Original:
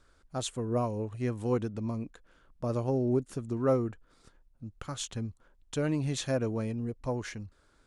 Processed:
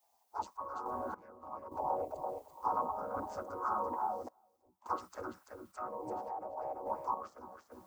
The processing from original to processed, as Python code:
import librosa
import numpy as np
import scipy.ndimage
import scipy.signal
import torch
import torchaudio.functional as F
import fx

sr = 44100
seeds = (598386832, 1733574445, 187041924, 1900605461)

p1 = fx.chord_vocoder(x, sr, chord='major triad', root=47)
p2 = fx.spec_gate(p1, sr, threshold_db=-20, keep='weak')
p3 = fx.env_lowpass_down(p2, sr, base_hz=1100.0, full_db=-45.5)
p4 = fx.band_shelf(p3, sr, hz=2400.0, db=-16.0, octaves=1.7)
p5 = fx.over_compress(p4, sr, threshold_db=-57.0, ratio=-1.0)
p6 = p4 + (p5 * librosa.db_to_amplitude(-2.0))
p7 = fx.dmg_noise_colour(p6, sr, seeds[0], colour='blue', level_db=-80.0)
p8 = p7 + fx.echo_feedback(p7, sr, ms=337, feedback_pct=15, wet_db=-6.0, dry=0)
p9 = fx.tremolo_random(p8, sr, seeds[1], hz=3.5, depth_pct=90)
p10 = fx.bell_lfo(p9, sr, hz=0.46, low_hz=730.0, high_hz=1500.0, db=17)
y = p10 * librosa.db_to_amplitude(8.5)